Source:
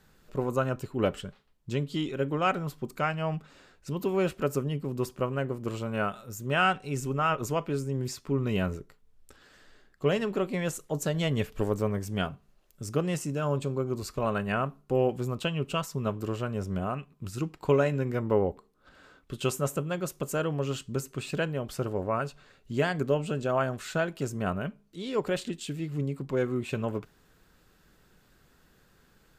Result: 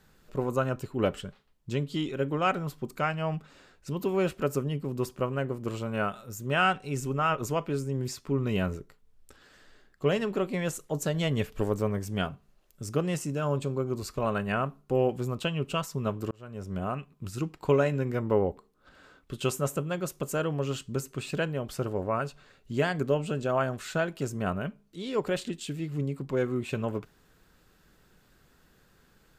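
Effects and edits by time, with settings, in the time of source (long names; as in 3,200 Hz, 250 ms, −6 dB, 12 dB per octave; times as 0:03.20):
0:16.31–0:16.89: fade in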